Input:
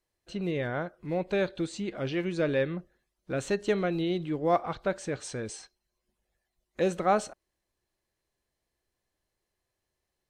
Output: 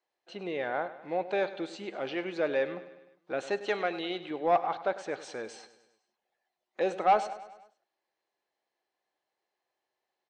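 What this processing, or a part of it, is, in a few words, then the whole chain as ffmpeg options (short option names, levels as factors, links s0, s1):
intercom: -filter_complex "[0:a]highpass=390,lowpass=4300,equalizer=f=800:t=o:w=0.37:g=8,asoftclip=type=tanh:threshold=0.168,asettb=1/sr,asplit=3[s0][s1][s2];[s0]atrim=end=3.664[s3];[s1]atrim=start=3.66:end=4.31,asetpts=PTS-STARTPTS,afade=t=in:d=0.004:c=qsin,afade=t=out:st=0.646:d=0.004:c=qsin,tiltshelf=f=720:g=-4.5[s4];[s2]atrim=start=4.306[s5];[s3][s4]acrossfade=d=0.004:c1=hsin:c2=qsin[s6];[s6][s5]acrossfade=d=0.004:c1=qsin:c2=hsin,aecho=1:1:101|202|303|404|505:0.178|0.0978|0.0538|0.0296|0.0163"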